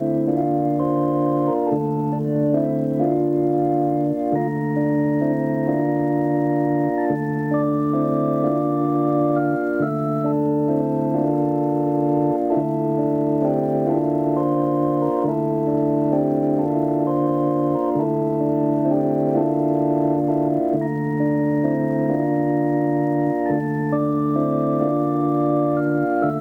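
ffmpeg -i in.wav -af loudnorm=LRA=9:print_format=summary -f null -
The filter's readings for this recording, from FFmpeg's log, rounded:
Input Integrated:    -20.4 LUFS
Input True Peak:      -7.2 dBTP
Input LRA:             0.5 LU
Input Threshold:     -30.4 LUFS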